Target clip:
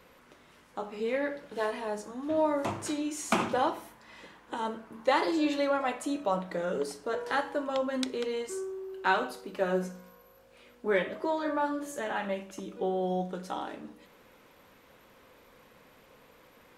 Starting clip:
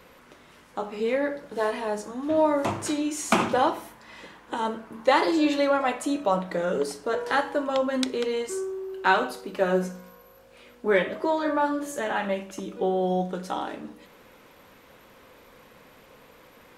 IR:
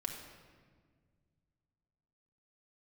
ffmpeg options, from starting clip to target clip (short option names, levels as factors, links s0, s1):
-filter_complex "[0:a]asettb=1/sr,asplit=3[s0][s1][s2];[s0]atrim=end=1.144[s3];[s1]atrim=start=1.14:end=1.66,asetpts=PTS-STARTPTS,afade=t=in:d=0.004:c=qsin,afade=t=out:st=0.516:d=0.004:c=qsin,equalizer=f=2800:w=1.1:g=5.5[s4];[s2]atrim=start=1.656[s5];[s3][s4]acrossfade=d=0.004:c1=hsin:c2=qsin[s6];[s6][s5]acrossfade=d=0.004:c1=qsin:c2=hsin,volume=0.531"